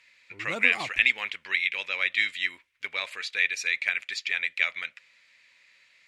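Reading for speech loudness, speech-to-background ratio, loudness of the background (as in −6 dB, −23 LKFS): −26.0 LKFS, 12.0 dB, −38.0 LKFS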